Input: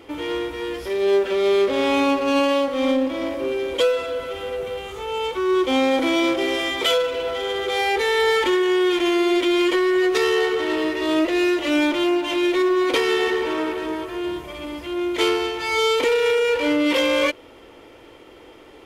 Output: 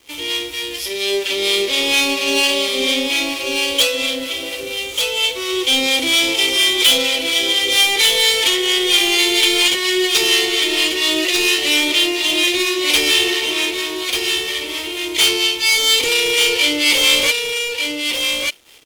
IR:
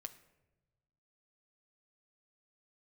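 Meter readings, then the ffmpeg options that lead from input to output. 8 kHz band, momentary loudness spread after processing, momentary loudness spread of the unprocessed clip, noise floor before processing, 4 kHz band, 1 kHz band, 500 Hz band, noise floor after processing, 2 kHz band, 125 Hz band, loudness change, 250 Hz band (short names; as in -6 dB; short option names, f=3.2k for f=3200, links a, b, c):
+18.5 dB, 9 LU, 9 LU, -45 dBFS, +14.5 dB, -3.0 dB, -3.5 dB, -27 dBFS, +8.0 dB, n/a, +6.0 dB, -3.5 dB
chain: -filter_complex "[0:a]aexciter=amount=8.6:drive=5.3:freq=2.2k,asoftclip=type=hard:threshold=-8dB,acrossover=split=730[a][b];[a]aeval=exprs='val(0)*(1-0.5/2+0.5/2*cos(2*PI*4.3*n/s))':c=same[c];[b]aeval=exprs='val(0)*(1-0.5/2-0.5/2*cos(2*PI*4.3*n/s))':c=same[d];[c][d]amix=inputs=2:normalize=0,aeval=exprs='sgn(val(0))*max(abs(val(0))-0.0112,0)':c=same,asplit=2[e][f];[f]aecho=0:1:1191:0.596[g];[e][g]amix=inputs=2:normalize=0,volume=-1dB"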